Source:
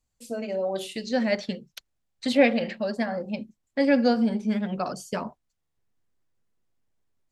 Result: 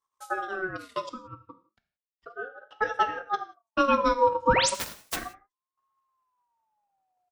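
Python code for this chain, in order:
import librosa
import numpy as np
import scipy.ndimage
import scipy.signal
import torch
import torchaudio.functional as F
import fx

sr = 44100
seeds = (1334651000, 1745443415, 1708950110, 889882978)

y = fx.spec_flatten(x, sr, power=0.1, at=(4.74, 5.15), fade=0.02)
y = fx.transient(y, sr, attack_db=7, sustain_db=-11)
y = fx.small_body(y, sr, hz=(230.0, 630.0, 990.0, 1700.0), ring_ms=45, db=7)
y = fx.auto_wah(y, sr, base_hz=440.0, top_hz=1100.0, q=12.0, full_db=-17.0, direction='down', at=(1.09, 2.71))
y = fx.spec_paint(y, sr, seeds[0], shape='rise', start_s=4.47, length_s=0.23, low_hz=380.0, high_hz=9500.0, level_db=-17.0)
y = fx.rev_gated(y, sr, seeds[1], gate_ms=200, shape='falling', drr_db=8.5)
y = fx.ring_lfo(y, sr, carrier_hz=900.0, swing_pct=20, hz=0.34)
y = y * 10.0 ** (-5.0 / 20.0)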